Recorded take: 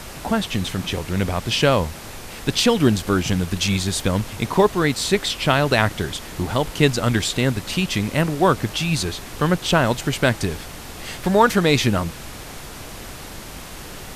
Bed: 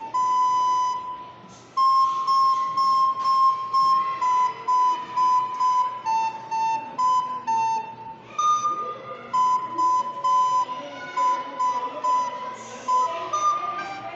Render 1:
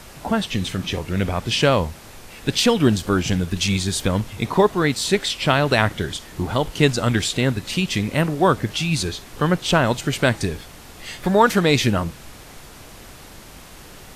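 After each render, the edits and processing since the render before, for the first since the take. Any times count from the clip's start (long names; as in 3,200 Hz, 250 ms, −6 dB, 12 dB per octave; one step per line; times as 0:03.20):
noise reduction from a noise print 6 dB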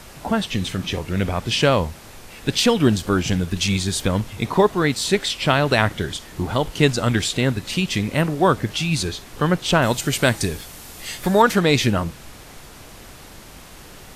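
0:09.82–0:11.42: high-shelf EQ 5,800 Hz +10 dB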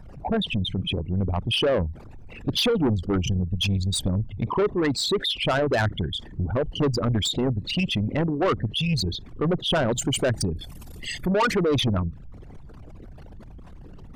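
spectral envelope exaggerated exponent 3
soft clipping −17.5 dBFS, distortion −9 dB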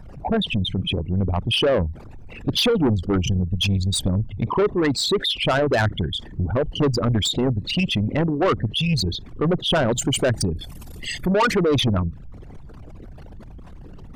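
level +3 dB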